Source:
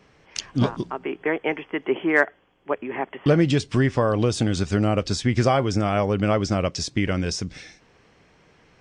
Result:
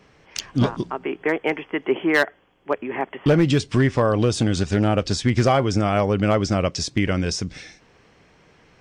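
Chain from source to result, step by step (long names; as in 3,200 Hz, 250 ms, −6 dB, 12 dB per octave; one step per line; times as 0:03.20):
hard clipping −12 dBFS, distortion −20 dB
0:04.61–0:05.23: highs frequency-modulated by the lows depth 0.13 ms
level +2 dB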